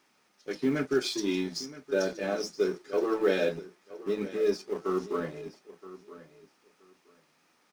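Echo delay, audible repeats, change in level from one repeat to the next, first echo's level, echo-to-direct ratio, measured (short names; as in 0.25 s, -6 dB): 0.972 s, 2, -15.0 dB, -16.5 dB, -16.5 dB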